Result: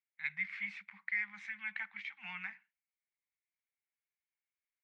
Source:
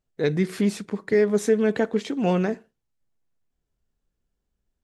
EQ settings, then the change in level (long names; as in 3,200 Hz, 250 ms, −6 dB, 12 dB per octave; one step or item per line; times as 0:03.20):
Chebyshev band-stop filter 200–810 Hz, order 4
transistor ladder low-pass 2,300 Hz, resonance 80%
first difference
+10.0 dB